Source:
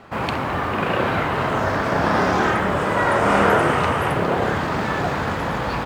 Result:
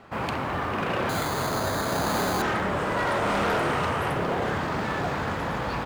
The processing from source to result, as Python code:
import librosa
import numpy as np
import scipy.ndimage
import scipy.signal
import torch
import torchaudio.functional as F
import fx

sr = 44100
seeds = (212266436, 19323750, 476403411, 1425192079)

y = fx.resample_bad(x, sr, factor=8, down='filtered', up='hold', at=(1.09, 2.42))
y = np.clip(y, -10.0 ** (-16.5 / 20.0), 10.0 ** (-16.5 / 20.0))
y = F.gain(torch.from_numpy(y), -5.0).numpy()